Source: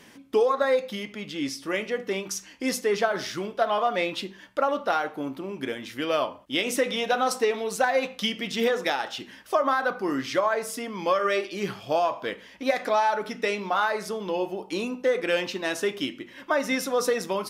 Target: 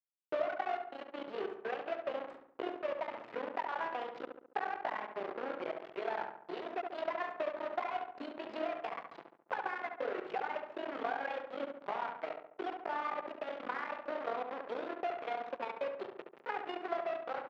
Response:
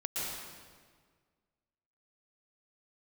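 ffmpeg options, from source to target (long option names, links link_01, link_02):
-filter_complex "[0:a]adynamicequalizer=threshold=0.02:dfrequency=460:dqfactor=2.2:tfrequency=460:tqfactor=2.2:attack=5:release=100:ratio=0.375:range=2:mode=boostabove:tftype=bell,acompressor=threshold=-32dB:ratio=8,tremolo=f=31:d=0.571,aeval=exprs='0.15*(cos(1*acos(clip(val(0)/0.15,-1,1)))-cos(1*PI/2))+0.00237*(cos(2*acos(clip(val(0)/0.15,-1,1)))-cos(2*PI/2))+0.0266*(cos(4*acos(clip(val(0)/0.15,-1,1)))-cos(4*PI/2))+0.0531*(cos(6*acos(clip(val(0)/0.15,-1,1)))-cos(6*PI/2))+0.015*(cos(8*acos(clip(val(0)/0.15,-1,1)))-cos(8*PI/2))':channel_layout=same,asetrate=60591,aresample=44100,atempo=0.727827,acrusher=bits=5:mix=0:aa=0.000001,adynamicsmooth=sensitivity=3.5:basefreq=1200,highpass=310,lowpass=2800,asplit=2[link_01][link_02];[link_02]adelay=70,lowpass=frequency=2000:poles=1,volume=-5dB,asplit=2[link_03][link_04];[link_04]adelay=70,lowpass=frequency=2000:poles=1,volume=0.51,asplit=2[link_05][link_06];[link_06]adelay=70,lowpass=frequency=2000:poles=1,volume=0.51,asplit=2[link_07][link_08];[link_08]adelay=70,lowpass=frequency=2000:poles=1,volume=0.51,asplit=2[link_09][link_10];[link_10]adelay=70,lowpass=frequency=2000:poles=1,volume=0.51,asplit=2[link_11][link_12];[link_12]adelay=70,lowpass=frequency=2000:poles=1,volume=0.51[link_13];[link_03][link_05][link_07][link_09][link_11][link_13]amix=inputs=6:normalize=0[link_14];[link_01][link_14]amix=inputs=2:normalize=0"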